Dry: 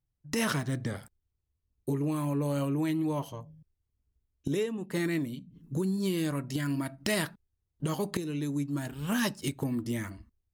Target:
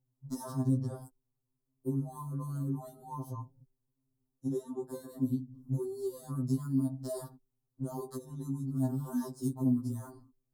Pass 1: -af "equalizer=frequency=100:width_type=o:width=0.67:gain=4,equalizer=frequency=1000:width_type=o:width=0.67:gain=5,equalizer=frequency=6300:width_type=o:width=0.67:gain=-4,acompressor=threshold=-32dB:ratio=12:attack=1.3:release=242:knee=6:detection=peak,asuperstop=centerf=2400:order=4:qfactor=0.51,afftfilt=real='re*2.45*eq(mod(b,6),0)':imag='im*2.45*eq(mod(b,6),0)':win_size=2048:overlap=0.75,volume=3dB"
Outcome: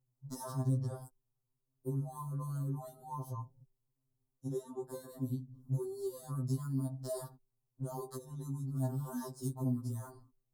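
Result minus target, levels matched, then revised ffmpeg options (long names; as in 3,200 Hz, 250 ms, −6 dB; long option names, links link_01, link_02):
250 Hz band −3.5 dB
-af "equalizer=frequency=100:width_type=o:width=0.67:gain=4,equalizer=frequency=1000:width_type=o:width=0.67:gain=5,equalizer=frequency=6300:width_type=o:width=0.67:gain=-4,acompressor=threshold=-32dB:ratio=12:attack=1.3:release=242:knee=6:detection=peak,asuperstop=centerf=2400:order=4:qfactor=0.51,equalizer=frequency=270:width_type=o:width=0.74:gain=8.5,afftfilt=real='re*2.45*eq(mod(b,6),0)':imag='im*2.45*eq(mod(b,6),0)':win_size=2048:overlap=0.75,volume=3dB"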